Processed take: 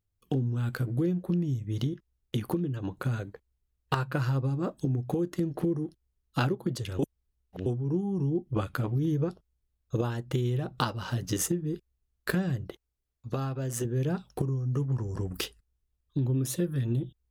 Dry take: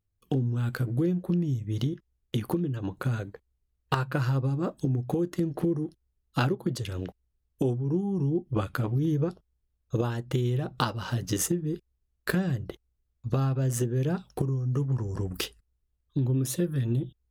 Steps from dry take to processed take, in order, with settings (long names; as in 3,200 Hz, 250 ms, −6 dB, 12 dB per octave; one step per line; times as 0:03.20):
0:06.99–0:07.66: reverse
0:12.67–0:13.85: low-shelf EQ 180 Hz −8.5 dB
level −1.5 dB